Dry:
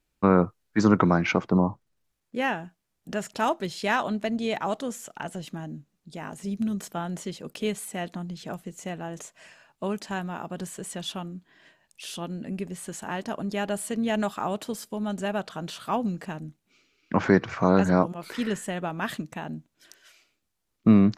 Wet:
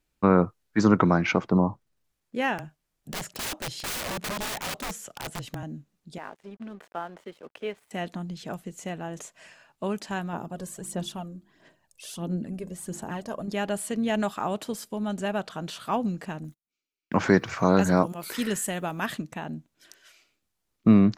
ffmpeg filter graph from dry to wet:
ffmpeg -i in.wav -filter_complex "[0:a]asettb=1/sr,asplit=3[link_01][link_02][link_03];[link_01]atrim=end=2.584[link_04];[link_02]atrim=start=2.58:end=5.63,asetpts=PTS-STARTPTS,afade=type=in:duration=0.004:curve=qsin,afade=type=out:start_time=3.046:duration=0.004:curve=qsin,afreqshift=-25,aeval=exprs='(mod(22.4*val(0)+1,2)-1)/22.4':channel_layout=same[link_05];[link_03]atrim=start=5.626[link_06];[link_04][link_05]acrossfade=duration=0.004:curve1=hsin:curve2=qsin[link_07];[link_07][link_06]acrossfade=duration=0.004:curve1=qsin:curve2=hsin,asettb=1/sr,asplit=3[link_08][link_09][link_10];[link_08]atrim=end=6.184[link_11];[link_09]atrim=start=6.18:end=7.91,asetpts=PTS-STARTPTS,afade=type=in:duration=0.004:curve=qsin,afade=type=out:start_time=1.726:duration=0.004:curve=qsin,highpass=frequency=99:poles=1,acrossover=split=340 2800:gain=0.158 1 0.0794[link_12][link_13][link_14];[link_12][link_13][link_14]amix=inputs=3:normalize=0,aeval=exprs='sgn(val(0))*max(abs(val(0))-0.00178,0)':channel_layout=same[link_15];[link_10]atrim=start=7.906[link_16];[link_11][link_15]acrossfade=duration=0.004:curve1=hsin:curve2=qsin[link_17];[link_17][link_16]acrossfade=duration=0.004:curve1=qsin:curve2=hsin,asettb=1/sr,asplit=3[link_18][link_19][link_20];[link_18]atrim=end=10.334[link_21];[link_19]atrim=start=10.33:end=13.48,asetpts=PTS-STARTPTS,afade=type=in:duration=0.004:curve=qsin,afade=type=out:start_time=3.146:duration=0.004:curve=qsin,equalizer=frequency=2400:width=0.63:gain=-8.5,bandreject=frequency=50:width_type=h:width=6,bandreject=frequency=100:width_type=h:width=6,bandreject=frequency=150:width_type=h:width=6,bandreject=frequency=200:width_type=h:width=6,bandreject=frequency=250:width_type=h:width=6,bandreject=frequency=300:width_type=h:width=6,bandreject=frequency=350:width_type=h:width=6,aphaser=in_gain=1:out_gain=1:delay=1.9:decay=0.5:speed=1.5:type=sinusoidal[link_22];[link_20]atrim=start=13.476[link_23];[link_21][link_22]acrossfade=duration=0.004:curve1=hsin:curve2=qsin[link_24];[link_24][link_23]acrossfade=duration=0.004:curve1=qsin:curve2=hsin,asettb=1/sr,asplit=3[link_25][link_26][link_27];[link_25]atrim=end=16.444[link_28];[link_26]atrim=start=16.44:end=19.06,asetpts=PTS-STARTPTS,afade=type=in:duration=0.004:curve=qsin,afade=type=out:start_time=2.616:duration=0.004:curve=qsin,aemphasis=mode=production:type=50fm,agate=range=-28dB:threshold=-51dB:ratio=16:release=100:detection=peak[link_29];[link_27]atrim=start=19.056[link_30];[link_28][link_29]acrossfade=duration=0.004:curve1=hsin:curve2=qsin[link_31];[link_31][link_30]acrossfade=duration=0.004:curve1=qsin:curve2=hsin" out.wav

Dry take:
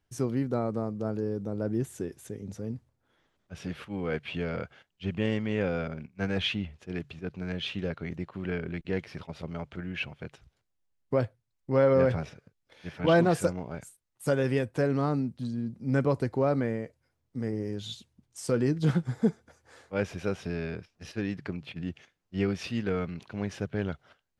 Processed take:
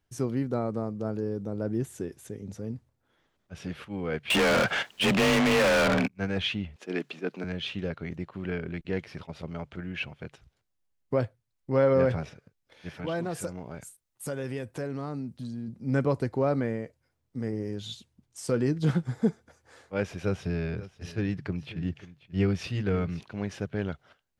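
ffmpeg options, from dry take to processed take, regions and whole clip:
ffmpeg -i in.wav -filter_complex "[0:a]asettb=1/sr,asplit=3[link_01][link_02][link_03];[link_01]atrim=end=4.304[link_04];[link_02]atrim=start=4.3:end=6.08,asetpts=PTS-STARTPTS,afade=type=in:duration=0.004:curve=qsin,afade=type=out:start_time=1.776:duration=0.004:curve=qsin,afreqshift=30,asplit=2[link_05][link_06];[link_06]highpass=frequency=720:poles=1,volume=38dB,asoftclip=type=tanh:threshold=-16dB[link_07];[link_05][link_07]amix=inputs=2:normalize=0,lowpass=frequency=5600:poles=1,volume=-6dB[link_08];[link_03]atrim=start=6.076[link_09];[link_04][link_08]acrossfade=duration=0.004:curve1=hsin:curve2=qsin[link_10];[link_10][link_09]acrossfade=duration=0.004:curve1=qsin:curve2=hsin,asettb=1/sr,asplit=3[link_11][link_12][link_13];[link_11]atrim=end=6.764[link_14];[link_12]atrim=start=6.76:end=7.44,asetpts=PTS-STARTPTS,afade=type=in:duration=0.004:curve=qsin,afade=type=out:start_time=0.676:duration=0.004:curve=qsin,highpass=frequency=230:width=0.5412,highpass=frequency=230:width=1.3066,acontrast=64[link_15];[link_13]atrim=start=7.436[link_16];[link_14][link_15]acrossfade=duration=0.004:curve1=hsin:curve2=qsin[link_17];[link_17][link_16]acrossfade=duration=0.004:curve1=qsin:curve2=hsin,asettb=1/sr,asplit=3[link_18][link_19][link_20];[link_18]atrim=end=12.894[link_21];[link_19]atrim=start=12.89:end=15.68,asetpts=PTS-STARTPTS,afade=type=in:duration=0.004:curve=qsin,afade=type=out:start_time=2.786:duration=0.004:curve=qsin,highshelf=frequency=6400:gain=5.5,acompressor=threshold=-35dB:ratio=2:attack=3.2:release=140:knee=1:detection=peak[link_22];[link_20]atrim=start=15.676[link_23];[link_21][link_22]acrossfade=duration=0.004:curve1=hsin:curve2=qsin[link_24];[link_24][link_23]acrossfade=duration=0.004:curve1=qsin:curve2=hsin,asettb=1/sr,asplit=3[link_25][link_26][link_27];[link_25]atrim=end=20.244[link_28];[link_26]atrim=start=20.24:end=23.21,asetpts=PTS-STARTPTS,afade=type=in:duration=0.004:curve=qsin,afade=type=out:start_time=2.966:duration=0.004:curve=qsin,equalizer=frequency=95:width_type=o:width=2.1:gain=7,bandreject=frequency=230:width=6.9,aecho=1:1:537:0.15,atrim=end_sample=130977[link_29];[link_27]atrim=start=23.206[link_30];[link_28][link_29]acrossfade=duration=0.004:curve1=hsin:curve2=qsin[link_31];[link_31][link_30]acrossfade=duration=0.004:curve1=qsin:curve2=hsin" out.wav

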